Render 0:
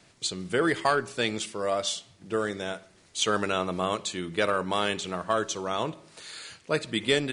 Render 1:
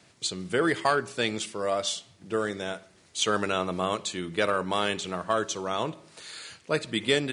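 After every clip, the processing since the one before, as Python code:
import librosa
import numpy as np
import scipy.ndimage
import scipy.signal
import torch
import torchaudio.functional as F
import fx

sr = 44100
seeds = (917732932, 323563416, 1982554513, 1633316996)

y = scipy.signal.sosfilt(scipy.signal.butter(2, 54.0, 'highpass', fs=sr, output='sos'), x)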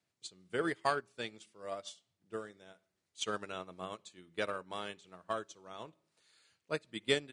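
y = fx.upward_expand(x, sr, threshold_db=-34.0, expansion=2.5)
y = y * 10.0 ** (-5.0 / 20.0)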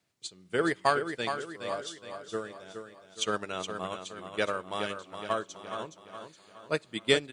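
y = fx.echo_feedback(x, sr, ms=418, feedback_pct=46, wet_db=-8)
y = y * 10.0 ** (6.5 / 20.0)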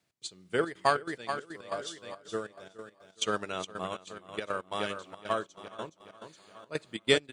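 y = fx.step_gate(x, sr, bpm=140, pattern='x.xxxx.xx.x.x.', floor_db=-12.0, edge_ms=4.5)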